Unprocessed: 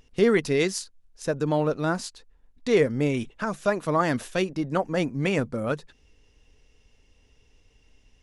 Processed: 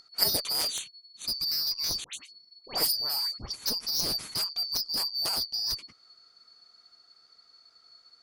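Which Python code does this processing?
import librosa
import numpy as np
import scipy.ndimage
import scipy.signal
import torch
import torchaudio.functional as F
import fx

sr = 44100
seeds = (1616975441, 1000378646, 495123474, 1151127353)

y = fx.band_shuffle(x, sr, order='2341')
y = fx.cheby_harmonics(y, sr, harmonics=(2, 3, 7), levels_db=(-28, -7, -22), full_scale_db=-8.5)
y = fx.dispersion(y, sr, late='highs', ms=95.0, hz=1700.0, at=(2.04, 3.52))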